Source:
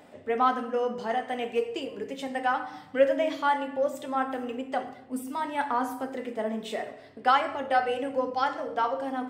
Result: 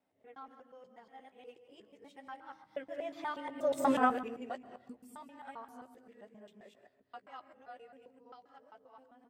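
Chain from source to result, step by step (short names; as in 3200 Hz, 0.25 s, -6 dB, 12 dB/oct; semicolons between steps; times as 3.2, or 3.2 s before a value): local time reversal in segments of 0.126 s; Doppler pass-by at 3.92, 16 m/s, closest 1.2 m; doubler 15 ms -12 dB; gain +6 dB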